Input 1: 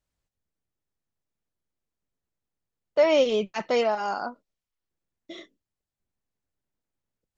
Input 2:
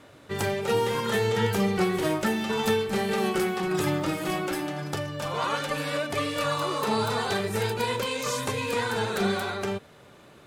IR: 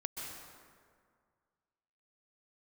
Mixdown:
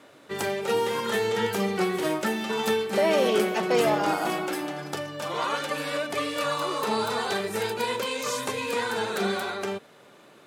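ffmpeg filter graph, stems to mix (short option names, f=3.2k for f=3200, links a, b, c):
-filter_complex "[0:a]alimiter=limit=-17dB:level=0:latency=1,volume=-1dB,asplit=2[a][b];[b]volume=-6.5dB[c];[1:a]volume=0dB[d];[2:a]atrim=start_sample=2205[e];[c][e]afir=irnorm=-1:irlink=0[f];[a][d][f]amix=inputs=3:normalize=0,highpass=210"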